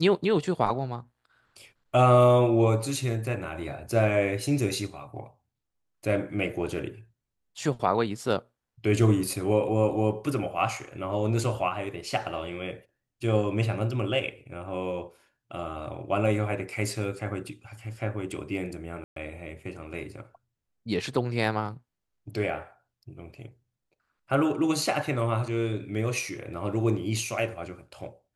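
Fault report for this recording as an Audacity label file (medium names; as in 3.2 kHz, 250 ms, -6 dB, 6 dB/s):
19.040000	19.160000	dropout 123 ms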